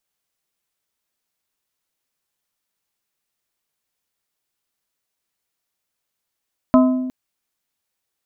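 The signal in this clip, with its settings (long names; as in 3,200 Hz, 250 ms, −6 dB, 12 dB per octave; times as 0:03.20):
struck glass plate, length 0.36 s, lowest mode 256 Hz, modes 4, decay 1.27 s, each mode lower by 4.5 dB, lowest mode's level −8 dB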